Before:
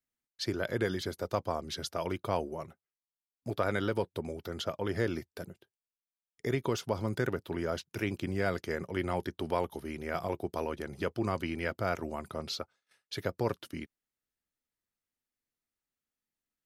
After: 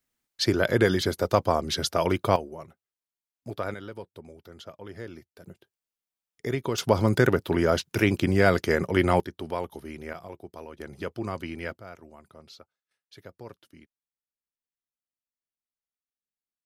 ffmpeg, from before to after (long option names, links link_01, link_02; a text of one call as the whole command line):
ffmpeg -i in.wav -af "asetnsamples=nb_out_samples=441:pad=0,asendcmd='2.36 volume volume -1dB;3.74 volume volume -8.5dB;5.46 volume volume 2.5dB;6.78 volume volume 11dB;9.2 volume volume 0dB;10.13 volume volume -7.5dB;10.8 volume volume -0.5dB;11.78 volume volume -12dB',volume=10dB" out.wav